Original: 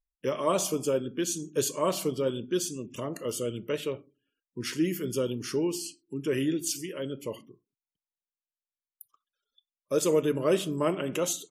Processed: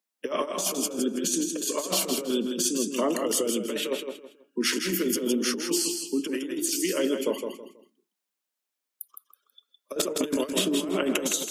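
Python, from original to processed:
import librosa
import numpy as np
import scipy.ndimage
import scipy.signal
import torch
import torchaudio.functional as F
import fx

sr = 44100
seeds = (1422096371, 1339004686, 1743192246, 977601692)

y = scipy.signal.sosfilt(scipy.signal.butter(12, 190.0, 'highpass', fs=sr, output='sos'), x)
y = fx.over_compress(y, sr, threshold_db=-33.0, ratio=-0.5)
y = fx.echo_feedback(y, sr, ms=162, feedback_pct=27, wet_db=-6.0)
y = fx.band_squash(y, sr, depth_pct=100, at=(9.96, 10.89))
y = y * librosa.db_to_amplitude(5.5)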